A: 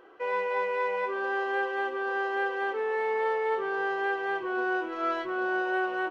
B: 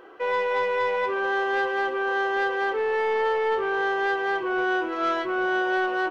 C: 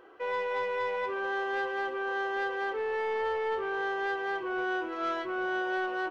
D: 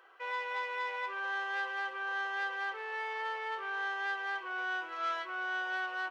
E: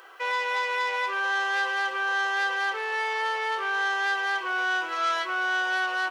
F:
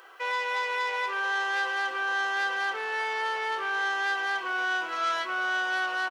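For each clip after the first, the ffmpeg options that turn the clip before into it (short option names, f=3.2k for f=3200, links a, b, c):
-af "asoftclip=type=tanh:threshold=-25dB,volume=6.5dB"
-af "equalizer=f=73:t=o:w=0.26:g=10,volume=-7dB"
-af "highpass=1k"
-filter_complex "[0:a]bass=f=250:g=-1,treble=f=4k:g=10,asplit=2[a][b];[b]alimiter=level_in=9dB:limit=-24dB:level=0:latency=1,volume=-9dB,volume=-1.5dB[c];[a][c]amix=inputs=2:normalize=0,volume=5.5dB"
-filter_complex "[0:a]asplit=6[a][b][c][d][e][f];[b]adelay=377,afreqshift=-56,volume=-20.5dB[g];[c]adelay=754,afreqshift=-112,volume=-24.8dB[h];[d]adelay=1131,afreqshift=-168,volume=-29.1dB[i];[e]adelay=1508,afreqshift=-224,volume=-33.4dB[j];[f]adelay=1885,afreqshift=-280,volume=-37.7dB[k];[a][g][h][i][j][k]amix=inputs=6:normalize=0,volume=-2dB"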